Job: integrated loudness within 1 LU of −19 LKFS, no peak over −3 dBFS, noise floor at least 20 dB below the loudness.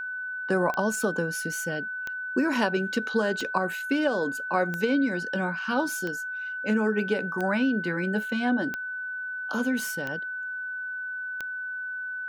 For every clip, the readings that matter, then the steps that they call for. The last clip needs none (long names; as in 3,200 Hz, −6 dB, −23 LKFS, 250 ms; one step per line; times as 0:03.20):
number of clicks 9; interfering tone 1,500 Hz; level of the tone −31 dBFS; integrated loudness −28.0 LKFS; sample peak −10.5 dBFS; target loudness −19.0 LKFS
→ click removal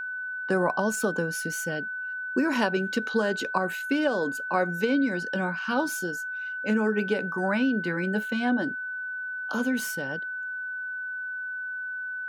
number of clicks 0; interfering tone 1,500 Hz; level of the tone −31 dBFS
→ notch filter 1,500 Hz, Q 30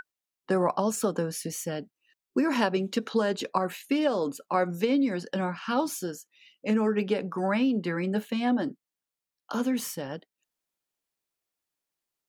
interfering tone none found; integrated loudness −28.5 LKFS; sample peak −10.5 dBFS; target loudness −19.0 LKFS
→ level +9.5 dB
brickwall limiter −3 dBFS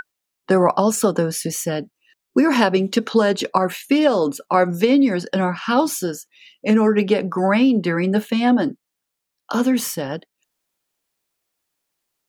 integrated loudness −19.0 LKFS; sample peak −3.0 dBFS; background noise floor −80 dBFS